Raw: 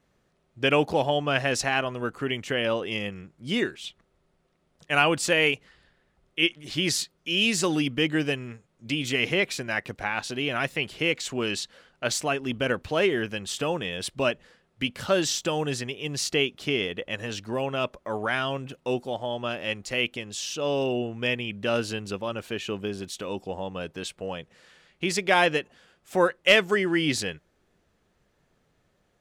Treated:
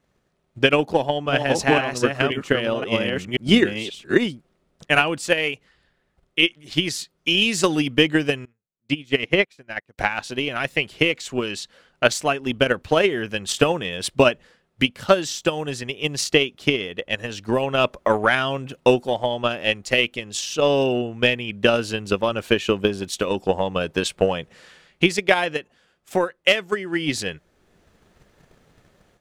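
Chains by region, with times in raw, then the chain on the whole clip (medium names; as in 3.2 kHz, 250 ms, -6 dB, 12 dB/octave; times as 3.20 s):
0.73–5.21 s: chunks repeated in reverse 528 ms, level -3 dB + peaking EQ 250 Hz +3.5 dB 1.4 oct
8.45–9.98 s: treble shelf 4.4 kHz -6.5 dB + upward expansion 2.5:1, over -42 dBFS
whole clip: transient shaper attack +12 dB, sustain 0 dB; level rider; trim -1 dB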